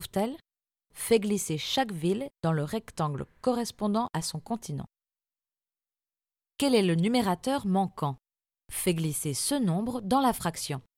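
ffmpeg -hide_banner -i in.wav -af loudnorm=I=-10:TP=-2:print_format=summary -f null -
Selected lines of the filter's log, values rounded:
Input Integrated:    -28.9 LUFS
Input True Peak:     -11.0 dBTP
Input LRA:             3.0 LU
Input Threshold:     -39.3 LUFS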